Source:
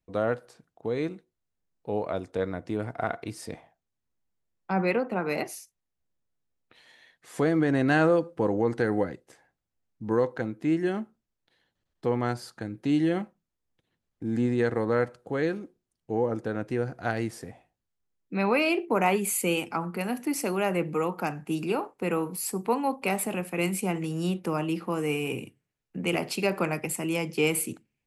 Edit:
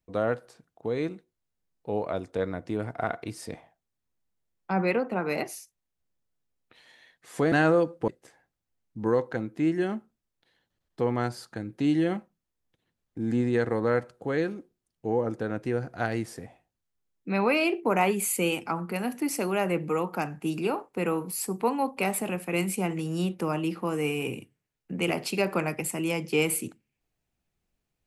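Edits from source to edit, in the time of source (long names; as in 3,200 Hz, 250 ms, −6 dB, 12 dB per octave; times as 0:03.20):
0:07.52–0:07.88: remove
0:08.44–0:09.13: remove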